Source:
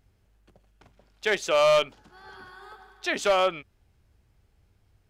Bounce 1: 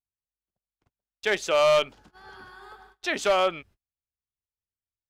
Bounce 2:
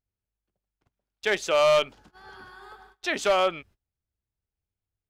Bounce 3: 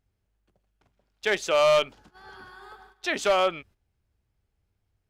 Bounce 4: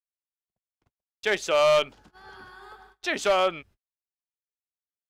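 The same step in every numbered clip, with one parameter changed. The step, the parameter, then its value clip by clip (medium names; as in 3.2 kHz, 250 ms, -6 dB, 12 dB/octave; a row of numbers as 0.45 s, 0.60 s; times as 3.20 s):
gate, range: -39 dB, -25 dB, -11 dB, -58 dB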